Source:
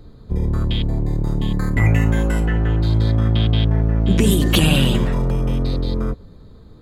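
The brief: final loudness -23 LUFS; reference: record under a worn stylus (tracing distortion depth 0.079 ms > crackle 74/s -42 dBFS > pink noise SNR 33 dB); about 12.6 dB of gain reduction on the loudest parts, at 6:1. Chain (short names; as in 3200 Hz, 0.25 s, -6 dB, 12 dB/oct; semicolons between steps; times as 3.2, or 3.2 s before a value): compressor 6:1, threshold -24 dBFS; tracing distortion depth 0.079 ms; crackle 74/s -42 dBFS; pink noise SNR 33 dB; gain +6 dB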